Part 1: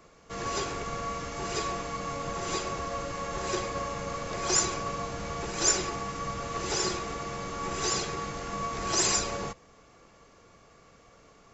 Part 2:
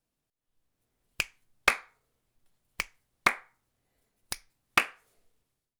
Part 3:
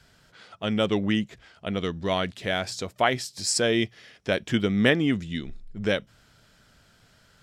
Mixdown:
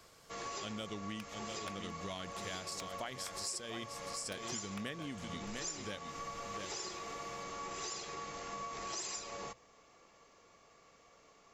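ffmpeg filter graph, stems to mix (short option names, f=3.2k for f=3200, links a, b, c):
-filter_complex "[0:a]equalizer=f=1.5k:w=6.7:g=-6,volume=-4dB[a];[1:a]acompressor=threshold=-33dB:ratio=6,volume=-6dB,asplit=2[b][c];[c]volume=-17.5dB[d];[2:a]bass=f=250:g=11,treble=f=4k:g=12,volume=-9.5dB,asplit=2[e][f];[f]volume=-9dB[g];[d][g]amix=inputs=2:normalize=0,aecho=0:1:700:1[h];[a][b][e][h]amix=inputs=4:normalize=0,lowshelf=f=290:g=-11,bandreject=f=60:t=h:w=6,bandreject=f=120:t=h:w=6,acompressor=threshold=-40dB:ratio=5"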